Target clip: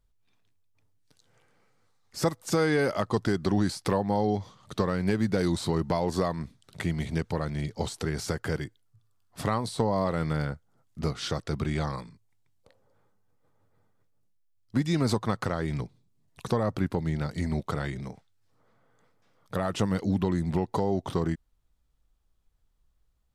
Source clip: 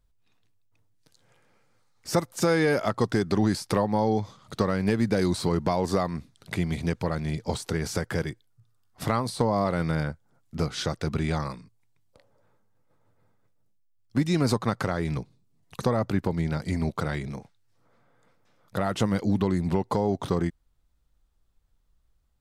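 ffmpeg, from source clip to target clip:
-af "asetrate=42336,aresample=44100,volume=0.794"

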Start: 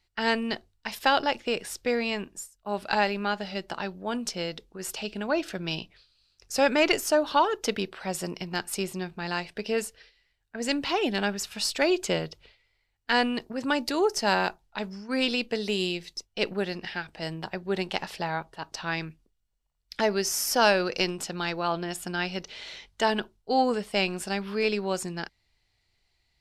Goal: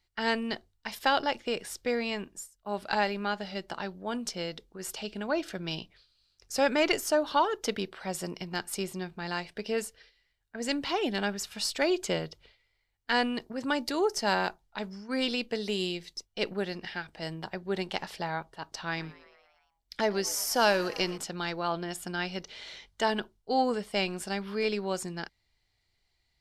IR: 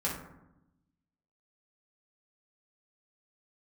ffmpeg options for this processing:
-filter_complex "[0:a]bandreject=f=2600:w=16,asettb=1/sr,asplit=3[s0][s1][s2];[s0]atrim=end=18.834[s3];[s1]atrim=start=18.83:end=21.18,asetpts=PTS-STARTPTS,afade=t=in:d=0.004:c=qsin,afade=t=out:st=2.346:d=0.004:c=qsin,asplit=7[s4][s5][s6][s7][s8][s9][s10];[s5]adelay=115,afreqshift=110,volume=0.106[s11];[s6]adelay=230,afreqshift=220,volume=0.0668[s12];[s7]adelay=345,afreqshift=330,volume=0.0422[s13];[s8]adelay=460,afreqshift=440,volume=0.0266[s14];[s9]adelay=575,afreqshift=550,volume=0.0166[s15];[s10]adelay=690,afreqshift=660,volume=0.0105[s16];[s4][s11][s12][s13][s14][s15][s16]amix=inputs=7:normalize=0,atrim=end_sample=103635[s17];[s2]atrim=start=21.176[s18];[s3][s17]acrossfade=d=0.004:c1=hsin:c2=qsin[s19];[s19][s18]acrossfade=d=0.004:c1=qsin:c2=hsin,volume=0.708"

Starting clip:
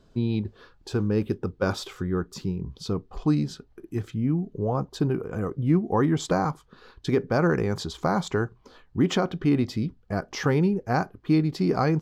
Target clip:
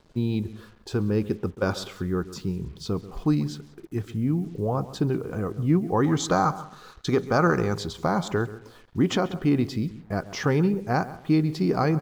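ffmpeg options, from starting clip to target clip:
-filter_complex "[0:a]asplit=2[s0][s1];[s1]adelay=136,lowpass=f=2000:p=1,volume=0.168,asplit=2[s2][s3];[s3]adelay=136,lowpass=f=2000:p=1,volume=0.27,asplit=2[s4][s5];[s5]adelay=136,lowpass=f=2000:p=1,volume=0.27[s6];[s2][s4][s6]amix=inputs=3:normalize=0[s7];[s0][s7]amix=inputs=2:normalize=0,acrusher=bits=8:mix=0:aa=0.5,asettb=1/sr,asplit=3[s8][s9][s10];[s8]atrim=end=6.044[s11];[s9]atrim=start=6.04:end=7.75,asetpts=PTS-STARTPTS,afade=t=in:d=0.004:c=qsin,afade=t=out:st=1.706:d=0.004:c=qsin,equalizer=f=800:t=o:w=0.33:g=4,equalizer=f=1250:t=o:w=0.33:g=9,equalizer=f=4000:t=o:w=0.33:g=6,equalizer=f=6300:t=o:w=0.33:g=8[s12];[s10]atrim=start=7.746[s13];[s11][s12]acrossfade=d=0.004:c1=hsin:c2=qsin[s14];[s14][s13]acrossfade=d=0.004:c1=qsin:c2=hsin,asplit=2[s15][s16];[s16]aecho=0:1:183:0.0631[s17];[s15][s17]amix=inputs=2:normalize=0"

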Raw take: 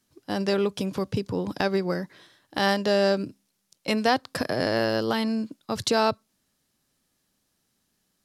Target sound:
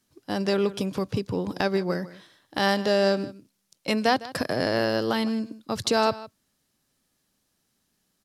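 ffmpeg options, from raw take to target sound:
-af "aecho=1:1:156:0.133"

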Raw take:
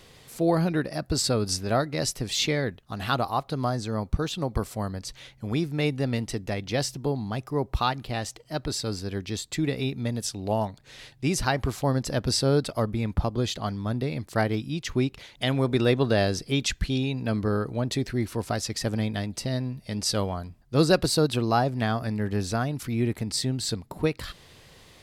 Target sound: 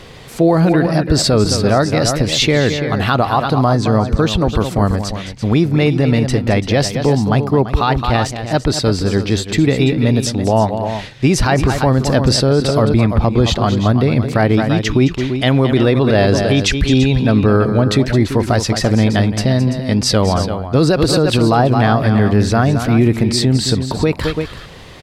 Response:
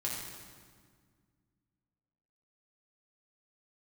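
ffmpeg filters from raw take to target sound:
-filter_complex "[0:a]lowpass=f=3000:p=1,asplit=2[s0][s1];[s1]aecho=0:1:216|338:0.266|0.251[s2];[s0][s2]amix=inputs=2:normalize=0,alimiter=level_in=8.91:limit=0.891:release=50:level=0:latency=1,volume=0.708"

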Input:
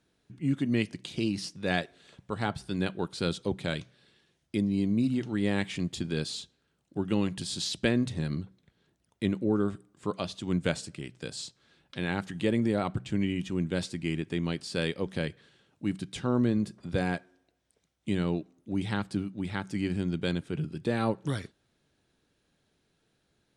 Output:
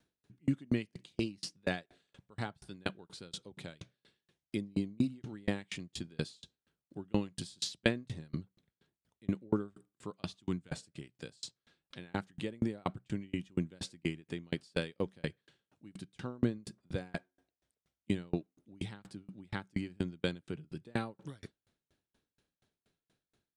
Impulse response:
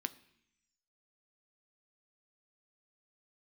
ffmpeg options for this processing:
-filter_complex "[0:a]asettb=1/sr,asplit=3[s0][s1][s2];[s0]atrim=end=10.234[s3];[s1]atrim=start=10.23:end=10.69,asetpts=PTS-STARTPTS,afade=t=in:d=0.004:c=qsin,afade=t=out:st=0.456:d=0.004:c=qsin,equalizer=f=550:t=o:w=0.28:g=-14[s4];[s2]atrim=start=10.686[s5];[s3][s4]acrossfade=d=0.004:c1=hsin:c2=qsin[s6];[s6][s5]acrossfade=d=0.004:c1=qsin:c2=hsin,aeval=exprs='val(0)*pow(10,-36*if(lt(mod(4.2*n/s,1),2*abs(4.2)/1000),1-mod(4.2*n/s,1)/(2*abs(4.2)/1000),(mod(4.2*n/s,1)-2*abs(4.2)/1000)/(1-2*abs(4.2)/1000))/20)':c=same,volume=1.12"

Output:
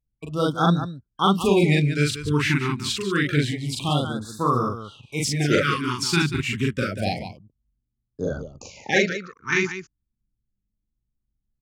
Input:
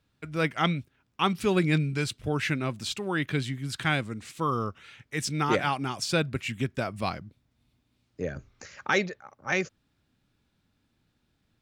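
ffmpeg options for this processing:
-af "anlmdn=0.00251,aecho=1:1:40.82|186.6:0.891|0.316,afftfilt=real='re*(1-between(b*sr/1024,570*pow(2500/570,0.5+0.5*sin(2*PI*0.28*pts/sr))/1.41,570*pow(2500/570,0.5+0.5*sin(2*PI*0.28*pts/sr))*1.41))':imag='im*(1-between(b*sr/1024,570*pow(2500/570,0.5+0.5*sin(2*PI*0.28*pts/sr))/1.41,570*pow(2500/570,0.5+0.5*sin(2*PI*0.28*pts/sr))*1.41))':win_size=1024:overlap=0.75,volume=1.58"

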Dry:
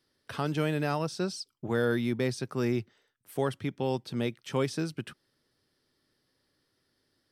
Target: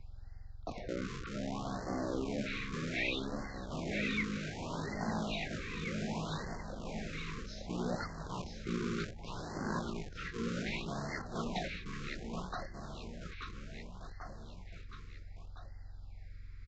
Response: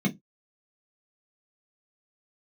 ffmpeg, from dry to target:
-filter_complex "[0:a]areverse,acompressor=threshold=0.0141:ratio=12,areverse,aeval=exprs='val(0)+0.00224*(sin(2*PI*50*n/s)+sin(2*PI*2*50*n/s)/2+sin(2*PI*3*50*n/s)/3+sin(2*PI*4*50*n/s)/4+sin(2*PI*5*50*n/s)/5)':c=same,acrossover=split=410[s0][s1];[s0]aeval=exprs='(mod(224*val(0)+1,2)-1)/224':c=same[s2];[s2][s1]amix=inputs=2:normalize=0,aecho=1:1:430|817|1165|1479|1761:0.631|0.398|0.251|0.158|0.1,asetrate=19360,aresample=44100,aresample=16000,aresample=44100,afftfilt=real='re*(1-between(b*sr/1024,700*pow(3000/700,0.5+0.5*sin(2*PI*0.65*pts/sr))/1.41,700*pow(3000/700,0.5+0.5*sin(2*PI*0.65*pts/sr))*1.41))':imag='im*(1-between(b*sr/1024,700*pow(3000/700,0.5+0.5*sin(2*PI*0.65*pts/sr))/1.41,700*pow(3000/700,0.5+0.5*sin(2*PI*0.65*pts/sr))*1.41))':win_size=1024:overlap=0.75,volume=2.37"

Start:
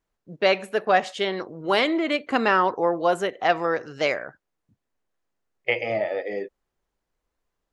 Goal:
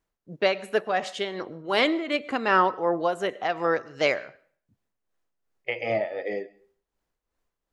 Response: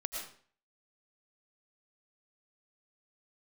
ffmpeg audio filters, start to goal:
-filter_complex "[0:a]tremolo=f=2.7:d=0.62,asplit=2[s0][s1];[1:a]atrim=start_sample=2205[s2];[s1][s2]afir=irnorm=-1:irlink=0,volume=0.106[s3];[s0][s3]amix=inputs=2:normalize=0"

